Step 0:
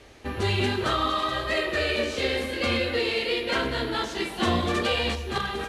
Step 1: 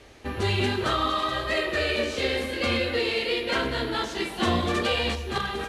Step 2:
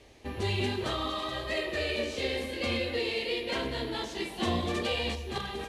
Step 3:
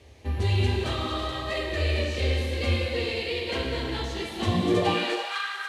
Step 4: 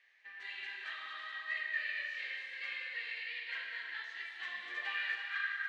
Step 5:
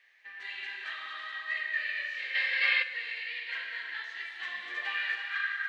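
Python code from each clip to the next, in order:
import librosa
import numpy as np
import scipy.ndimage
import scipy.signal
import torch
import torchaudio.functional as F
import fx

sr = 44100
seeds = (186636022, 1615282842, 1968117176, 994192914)

y1 = x
y2 = fx.peak_eq(y1, sr, hz=1400.0, db=-9.0, octaves=0.47)
y2 = F.gain(torch.from_numpy(y2), -5.0).numpy()
y3 = fx.filter_sweep_highpass(y2, sr, from_hz=76.0, to_hz=1400.0, start_s=4.43, end_s=4.98, q=6.9)
y3 = fx.rev_gated(y3, sr, seeds[0], gate_ms=460, shape='flat', drr_db=2.0)
y4 = fx.ladder_bandpass(y3, sr, hz=1900.0, resonance_pct=75)
y5 = fx.spec_box(y4, sr, start_s=2.35, length_s=0.48, low_hz=470.0, high_hz=5500.0, gain_db=11)
y5 = F.gain(torch.from_numpy(y5), 4.5).numpy()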